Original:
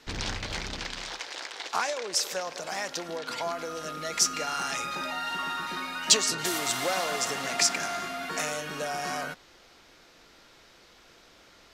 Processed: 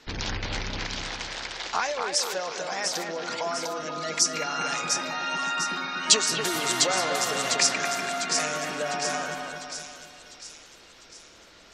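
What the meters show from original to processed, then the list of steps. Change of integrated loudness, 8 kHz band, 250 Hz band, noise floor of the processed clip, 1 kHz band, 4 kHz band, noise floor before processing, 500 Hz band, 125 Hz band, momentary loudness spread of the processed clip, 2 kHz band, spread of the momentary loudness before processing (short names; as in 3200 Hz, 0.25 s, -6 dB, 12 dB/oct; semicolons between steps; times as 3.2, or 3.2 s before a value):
+3.0 dB, +3.0 dB, +3.0 dB, -52 dBFS, +3.0 dB, +3.0 dB, -56 dBFS, +3.0 dB, +3.5 dB, 13 LU, +3.0 dB, 11 LU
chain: spectral gate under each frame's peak -25 dB strong; split-band echo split 3000 Hz, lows 0.244 s, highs 0.701 s, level -4.5 dB; gain +1.5 dB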